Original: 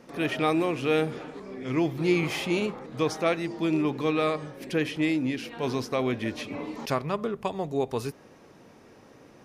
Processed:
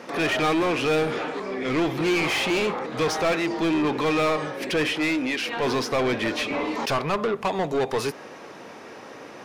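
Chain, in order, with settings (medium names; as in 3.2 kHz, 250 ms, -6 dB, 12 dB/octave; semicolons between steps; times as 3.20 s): 4.90–5.47 s: high-pass 240 Hz -> 560 Hz 6 dB/octave; overdrive pedal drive 26 dB, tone 3.7 kHz, clips at -11.5 dBFS; trim -3.5 dB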